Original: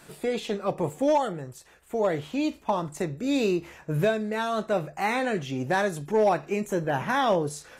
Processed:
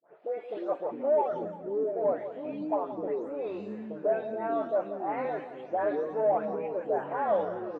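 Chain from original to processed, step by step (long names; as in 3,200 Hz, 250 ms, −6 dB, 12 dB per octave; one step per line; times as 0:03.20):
every frequency bin delayed by itself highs late, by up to 321 ms
pitch vibrato 0.35 Hz 9.1 cents
leveller curve on the samples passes 1
four-pole ladder band-pass 720 Hz, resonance 45%
repeating echo 173 ms, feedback 50%, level −12 dB
delay with pitch and tempo change per echo 197 ms, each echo −6 semitones, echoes 3, each echo −6 dB
level +2.5 dB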